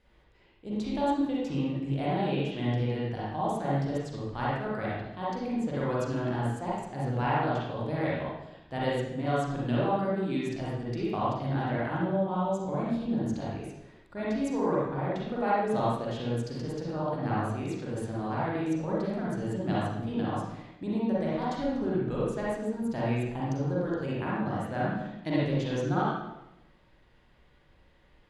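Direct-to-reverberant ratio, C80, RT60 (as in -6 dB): -7.5 dB, 1.0 dB, 0.90 s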